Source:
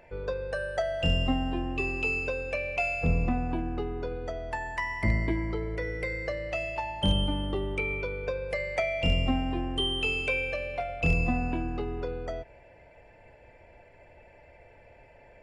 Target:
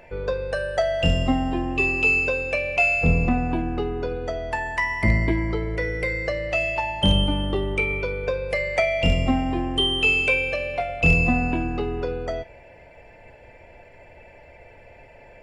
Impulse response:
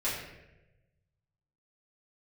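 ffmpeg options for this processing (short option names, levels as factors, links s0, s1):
-filter_complex "[0:a]asplit=2[s0][s1];[s1]highshelf=f=1700:t=q:w=1.5:g=8[s2];[1:a]atrim=start_sample=2205,atrim=end_sample=3087[s3];[s2][s3]afir=irnorm=-1:irlink=0,volume=0.1[s4];[s0][s4]amix=inputs=2:normalize=0,volume=2"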